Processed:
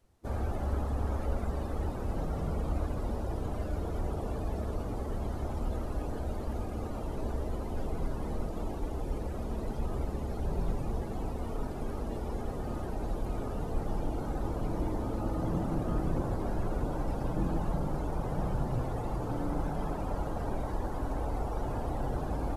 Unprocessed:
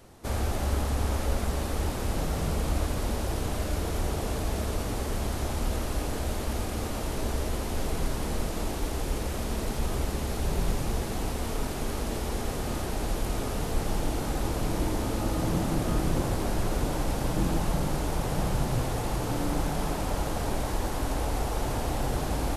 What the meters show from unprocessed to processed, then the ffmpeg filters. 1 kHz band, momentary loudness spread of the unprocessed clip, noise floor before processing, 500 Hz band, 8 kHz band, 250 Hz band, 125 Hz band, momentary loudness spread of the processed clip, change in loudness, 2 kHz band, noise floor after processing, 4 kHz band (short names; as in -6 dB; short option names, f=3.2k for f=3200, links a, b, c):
-5.0 dB, 4 LU, -32 dBFS, -4.0 dB, -18.5 dB, -4.0 dB, -4.0 dB, 4 LU, -4.5 dB, -11.0 dB, -37 dBFS, -17.0 dB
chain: -af "afftdn=nr=15:nf=-38,volume=-4dB"